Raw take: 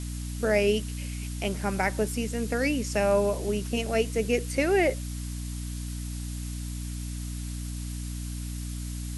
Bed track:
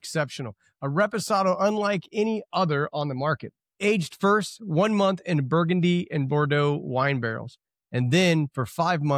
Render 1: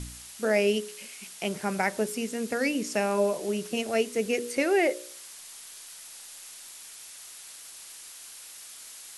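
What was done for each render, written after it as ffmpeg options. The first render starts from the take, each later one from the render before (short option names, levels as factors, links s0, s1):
-af "bandreject=f=60:t=h:w=4,bandreject=f=120:t=h:w=4,bandreject=f=180:t=h:w=4,bandreject=f=240:t=h:w=4,bandreject=f=300:t=h:w=4,bandreject=f=360:t=h:w=4,bandreject=f=420:t=h:w=4,bandreject=f=480:t=h:w=4,bandreject=f=540:t=h:w=4,bandreject=f=600:t=h:w=4"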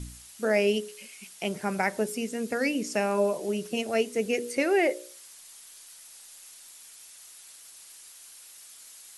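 -af "afftdn=nr=6:nf=-46"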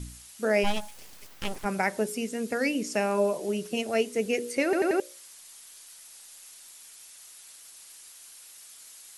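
-filter_complex "[0:a]asplit=3[s0][s1][s2];[s0]afade=t=out:st=0.63:d=0.02[s3];[s1]aeval=exprs='abs(val(0))':c=same,afade=t=in:st=0.63:d=0.02,afade=t=out:st=1.64:d=0.02[s4];[s2]afade=t=in:st=1.64:d=0.02[s5];[s3][s4][s5]amix=inputs=3:normalize=0,asplit=5[s6][s7][s8][s9][s10];[s6]atrim=end=4.732[s11];[s7]atrim=start=4.638:end=4.732[s12];[s8]atrim=start=4.638:end=4.732[s13];[s9]atrim=start=4.638:end=4.732[s14];[s10]atrim=start=4.998[s15];[s11][s12]acrossfade=d=0.004:c1=hsin:c2=hsin[s16];[s16][s13]acrossfade=d=0.004:c1=hsin:c2=hsin[s17];[s17][s14]acrossfade=d=0.004:c1=hsin:c2=hsin[s18];[s18][s15]acrossfade=d=0.004:c1=hsin:c2=hsin"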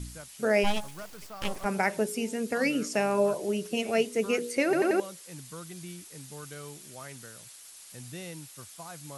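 -filter_complex "[1:a]volume=0.0841[s0];[0:a][s0]amix=inputs=2:normalize=0"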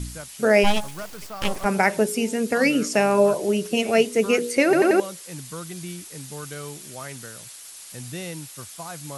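-af "volume=2.37"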